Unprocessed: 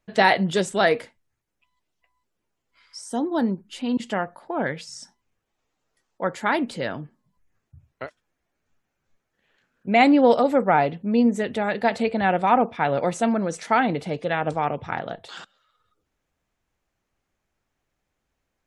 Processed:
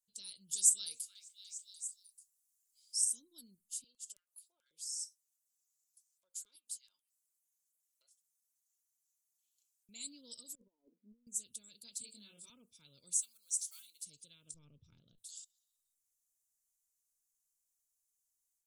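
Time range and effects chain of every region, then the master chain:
0.56–3.05 s: tilt shelf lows -5 dB, about 740 Hz + repeats whose band climbs or falls 295 ms, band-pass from 1.8 kHz, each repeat 0.7 oct, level -7 dB
3.84–9.89 s: comb 5.6 ms, depth 53% + compression 2.5:1, threshold -39 dBFS + step-sequenced high-pass 9.2 Hz 420–2400 Hz
10.55–11.27 s: brick-wall FIR band-pass 200–1100 Hz + compressor with a negative ratio -25 dBFS, ratio -0.5
12.01–12.50 s: high-pass 180 Hz 24 dB/octave + tone controls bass +3 dB, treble +1 dB + doubling 24 ms -2 dB
13.16–14.02 s: high-pass 1.3 kHz + companded quantiser 8-bit
14.54–15.18 s: low-pass 4 kHz + tilt EQ -3 dB/octave
whole clip: inverse Chebyshev high-pass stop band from 2 kHz, stop band 70 dB; tilt EQ -4 dB/octave; level rider gain up to 6 dB; trim +16.5 dB

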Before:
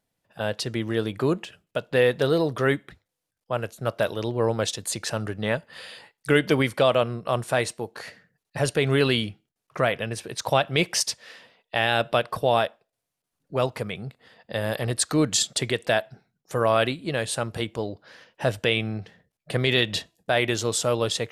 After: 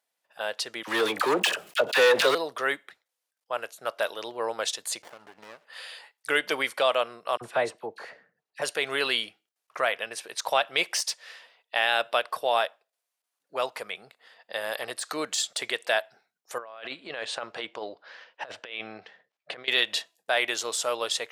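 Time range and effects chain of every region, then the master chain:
0.83–2.35 s: waveshaping leveller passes 3 + phase dispersion lows, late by 48 ms, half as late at 930 Hz + decay stretcher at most 82 dB/s
5.02–5.65 s: peaking EQ 2.6 kHz +5.5 dB 1.6 oct + compression 12:1, threshold -33 dBFS + sliding maximum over 33 samples
7.37–8.62 s: tilt EQ -4 dB/octave + phase dispersion lows, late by 44 ms, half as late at 1.6 kHz
16.58–19.68 s: compressor with a negative ratio -28 dBFS, ratio -0.5 + distance through air 140 m
whole clip: de-esser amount 45%; high-pass 690 Hz 12 dB/octave

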